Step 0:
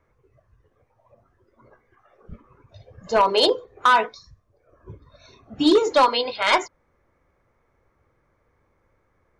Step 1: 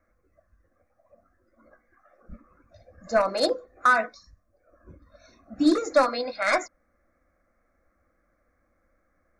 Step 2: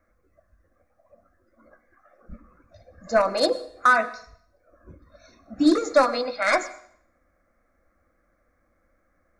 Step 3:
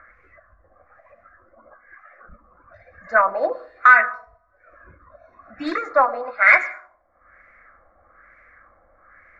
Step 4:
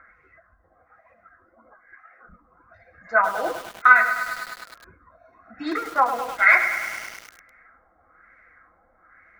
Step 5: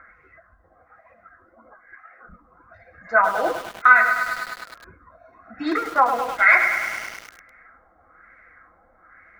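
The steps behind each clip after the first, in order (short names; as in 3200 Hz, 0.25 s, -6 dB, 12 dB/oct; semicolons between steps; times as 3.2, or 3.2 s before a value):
fixed phaser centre 620 Hz, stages 8
plate-style reverb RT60 0.63 s, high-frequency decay 0.95×, pre-delay 85 ms, DRR 16.5 dB; gain +2 dB
EQ curve 120 Hz 0 dB, 250 Hz -6 dB, 2000 Hz +13 dB, 3200 Hz +5 dB, 7100 Hz +10 dB; upward compressor, threshold -37 dBFS; LFO low-pass sine 1.1 Hz 790–2400 Hz; gain -6 dB
flange 1.8 Hz, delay 3.6 ms, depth 4.3 ms, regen +59%; notch comb 580 Hz; lo-fi delay 0.102 s, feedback 80%, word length 6-bit, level -10 dB; gain +3 dB
high shelf 4700 Hz -5 dB; in parallel at -1.5 dB: limiter -13 dBFS, peak gain reduction 11 dB; on the sum: gain -1.5 dB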